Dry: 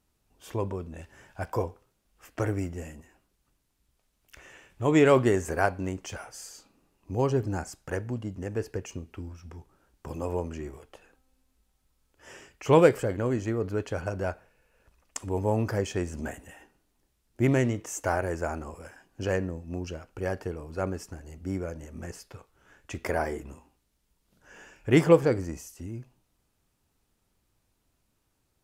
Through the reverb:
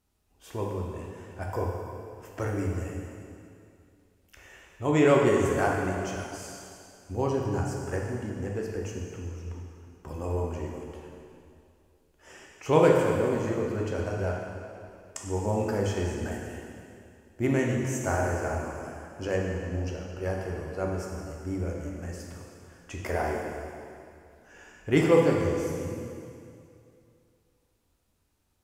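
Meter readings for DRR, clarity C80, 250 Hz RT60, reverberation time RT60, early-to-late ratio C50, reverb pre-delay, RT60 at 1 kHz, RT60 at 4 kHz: −1.5 dB, 2.5 dB, 2.6 s, 2.5 s, 1.0 dB, 5 ms, 2.4 s, 2.3 s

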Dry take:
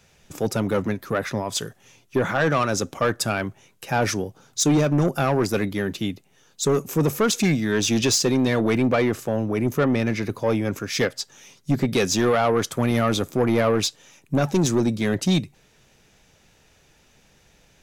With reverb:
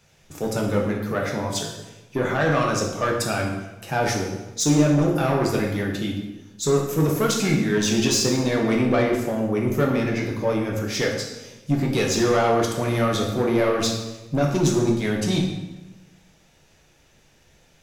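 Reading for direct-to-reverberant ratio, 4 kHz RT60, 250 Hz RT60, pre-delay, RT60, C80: −1.0 dB, 0.90 s, 1.2 s, 6 ms, 1.1 s, 6.5 dB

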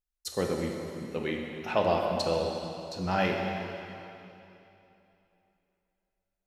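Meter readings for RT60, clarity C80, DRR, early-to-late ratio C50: 3.0 s, 3.0 dB, 0.5 dB, 2.0 dB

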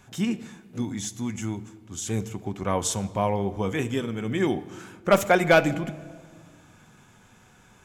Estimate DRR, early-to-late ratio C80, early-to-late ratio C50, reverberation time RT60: 10.0 dB, 18.0 dB, 16.5 dB, 1.7 s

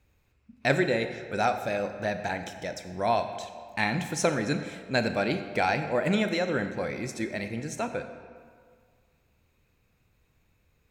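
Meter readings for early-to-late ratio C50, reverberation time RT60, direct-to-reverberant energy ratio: 9.0 dB, 1.9 s, 8.0 dB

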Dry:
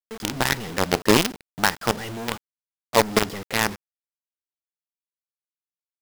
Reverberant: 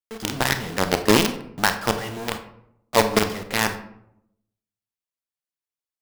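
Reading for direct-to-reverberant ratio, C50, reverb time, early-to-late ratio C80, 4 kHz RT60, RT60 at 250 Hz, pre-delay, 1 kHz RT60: 8.0 dB, 10.5 dB, 0.75 s, 14.0 dB, 0.40 s, 0.95 s, 27 ms, 0.70 s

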